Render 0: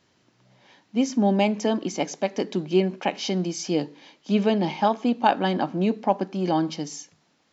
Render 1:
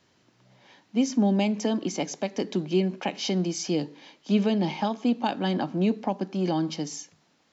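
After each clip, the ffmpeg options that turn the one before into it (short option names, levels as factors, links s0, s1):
-filter_complex "[0:a]acrossover=split=300|3000[s0][s1][s2];[s1]acompressor=threshold=0.0355:ratio=3[s3];[s0][s3][s2]amix=inputs=3:normalize=0"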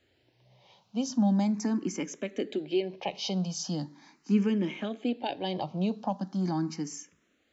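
-filter_complex "[0:a]lowshelf=f=75:g=8.5,asplit=2[s0][s1];[s1]afreqshift=0.4[s2];[s0][s2]amix=inputs=2:normalize=1,volume=0.794"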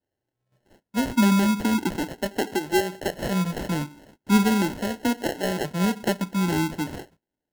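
-af "agate=range=0.0891:threshold=0.00126:ratio=16:detection=peak,acrusher=samples=37:mix=1:aa=0.000001,volume=2"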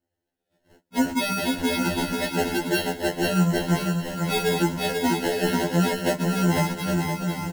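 -filter_complex "[0:a]asplit=2[s0][s1];[s1]aecho=0:1:490|808.5|1016|1150|1238:0.631|0.398|0.251|0.158|0.1[s2];[s0][s2]amix=inputs=2:normalize=0,afftfilt=real='re*2*eq(mod(b,4),0)':imag='im*2*eq(mod(b,4),0)':win_size=2048:overlap=0.75,volume=1.41"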